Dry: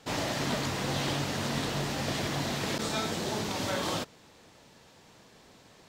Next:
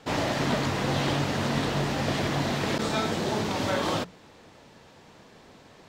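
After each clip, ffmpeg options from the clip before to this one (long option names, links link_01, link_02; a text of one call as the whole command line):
ffmpeg -i in.wav -af "highshelf=frequency=4300:gain=-9.5,bandreject=frequency=60:width_type=h:width=6,bandreject=frequency=120:width_type=h:width=6,bandreject=frequency=180:width_type=h:width=6,volume=5.5dB" out.wav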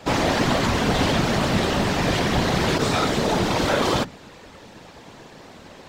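ffmpeg -i in.wav -af "aeval=exprs='0.237*(cos(1*acos(clip(val(0)/0.237,-1,1)))-cos(1*PI/2))+0.0841*(cos(5*acos(clip(val(0)/0.237,-1,1)))-cos(5*PI/2))':channel_layout=same,afftfilt=real='hypot(re,im)*cos(2*PI*random(0))':imag='hypot(re,im)*sin(2*PI*random(1))':win_size=512:overlap=0.75,volume=5.5dB" out.wav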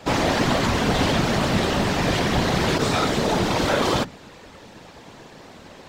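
ffmpeg -i in.wav -af anull out.wav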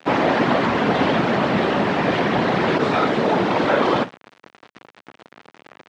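ffmpeg -i in.wav -af "acrusher=bits=5:mix=0:aa=0.000001,highpass=190,lowpass=2400,volume=4dB" out.wav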